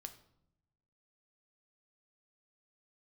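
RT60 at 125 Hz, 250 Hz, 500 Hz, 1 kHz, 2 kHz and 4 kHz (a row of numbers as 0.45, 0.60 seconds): 1.4, 1.2, 0.90, 0.70, 0.55, 0.50 seconds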